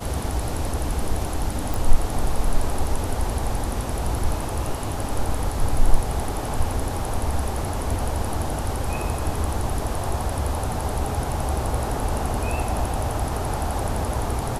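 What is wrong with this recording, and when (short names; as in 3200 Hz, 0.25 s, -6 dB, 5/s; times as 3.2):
1.74 pop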